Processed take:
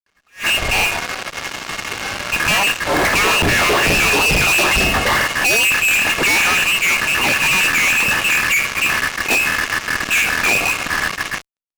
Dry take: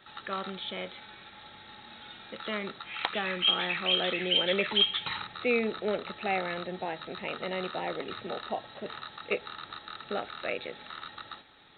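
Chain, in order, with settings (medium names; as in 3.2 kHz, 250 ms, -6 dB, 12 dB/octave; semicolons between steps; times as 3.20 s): de-hum 67.99 Hz, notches 18; frequency inversion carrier 3 kHz; fuzz box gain 49 dB, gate -49 dBFS; attacks held to a fixed rise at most 250 dB/s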